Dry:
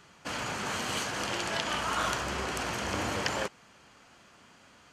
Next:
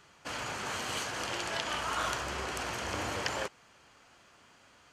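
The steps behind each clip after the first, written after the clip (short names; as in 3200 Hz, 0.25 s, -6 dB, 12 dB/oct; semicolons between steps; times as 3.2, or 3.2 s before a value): bell 200 Hz -5.5 dB 0.92 oct; gain -2.5 dB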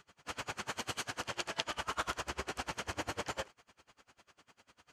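dB-linear tremolo 10 Hz, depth 28 dB; gain +1.5 dB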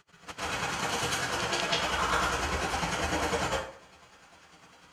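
plate-style reverb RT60 0.51 s, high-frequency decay 0.7×, pre-delay 0.12 s, DRR -9.5 dB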